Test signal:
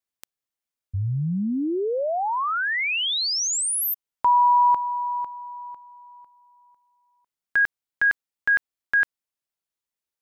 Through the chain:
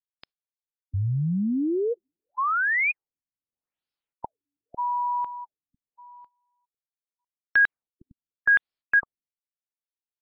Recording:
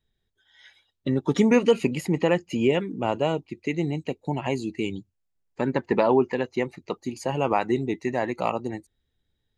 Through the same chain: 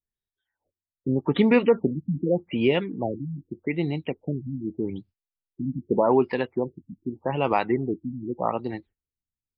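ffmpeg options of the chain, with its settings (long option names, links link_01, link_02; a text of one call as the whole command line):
ffmpeg -i in.wav -af "equalizer=frequency=4600:width_type=o:width=2.2:gain=3.5,agate=range=-19dB:threshold=-45dB:ratio=3:release=137:detection=rms,afftfilt=real='re*lt(b*sr/1024,280*pow(5500/280,0.5+0.5*sin(2*PI*0.83*pts/sr)))':imag='im*lt(b*sr/1024,280*pow(5500/280,0.5+0.5*sin(2*PI*0.83*pts/sr)))':win_size=1024:overlap=0.75" out.wav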